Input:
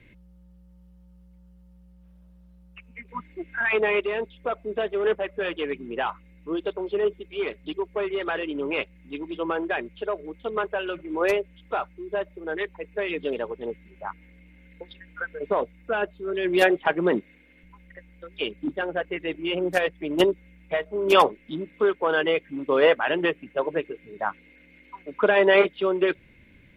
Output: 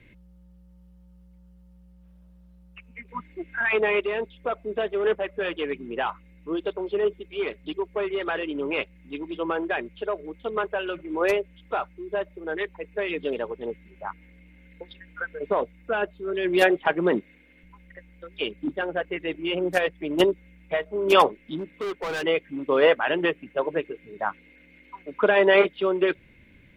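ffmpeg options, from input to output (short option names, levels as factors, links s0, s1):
-filter_complex "[0:a]asettb=1/sr,asplit=3[s0][s1][s2];[s0]atrim=end=21.584[s3];[s1]atrim=start=21.58:end=22.23,asetpts=PTS-STARTPTS,afade=t=in:d=0.004:c=qsin,afade=t=out:st=0.646:d=0.004:c=qsin,asoftclip=type=hard:threshold=0.0447[s4];[s2]atrim=start=22.226[s5];[s3][s4]acrossfade=d=0.004:c1=hsin:c2=qsin[s6];[s6][s5]acrossfade=d=0.004:c1=qsin:c2=hsin"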